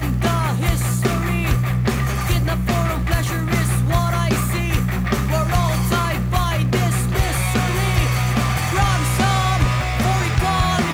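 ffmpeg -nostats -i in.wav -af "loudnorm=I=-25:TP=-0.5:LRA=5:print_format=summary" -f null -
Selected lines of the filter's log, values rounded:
Input Integrated:    -19.1 LUFS
Input True Peak:      -6.2 dBTP
Input LRA:             1.4 LU
Input Threshold:     -29.1 LUFS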